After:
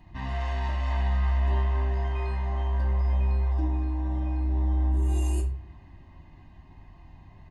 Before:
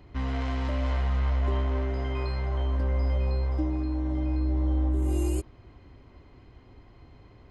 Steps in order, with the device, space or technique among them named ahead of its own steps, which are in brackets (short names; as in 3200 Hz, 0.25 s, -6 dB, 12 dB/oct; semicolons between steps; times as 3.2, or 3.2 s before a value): microphone above a desk (comb 1.1 ms, depth 86%; reverb RT60 0.50 s, pre-delay 3 ms, DRR 0 dB); gain -4.5 dB